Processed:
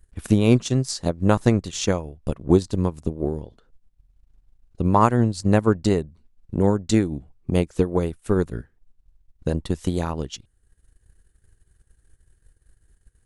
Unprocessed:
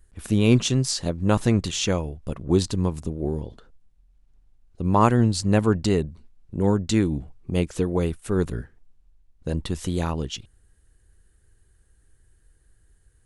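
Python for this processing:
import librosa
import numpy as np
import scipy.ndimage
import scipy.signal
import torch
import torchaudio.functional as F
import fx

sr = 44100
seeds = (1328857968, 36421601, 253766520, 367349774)

y = fx.transient(x, sr, attack_db=7, sustain_db=-7)
y = fx.dynamic_eq(y, sr, hz=2900.0, q=1.7, threshold_db=-42.0, ratio=4.0, max_db=-5)
y = y * librosa.db_to_amplitude(-1.0)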